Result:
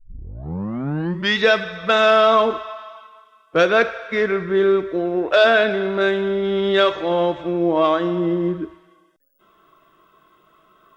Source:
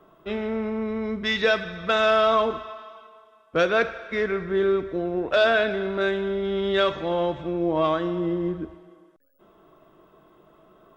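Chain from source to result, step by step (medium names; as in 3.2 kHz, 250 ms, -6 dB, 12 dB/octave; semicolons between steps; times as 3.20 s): tape start-up on the opening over 1.37 s; spectral noise reduction 11 dB; trim +5.5 dB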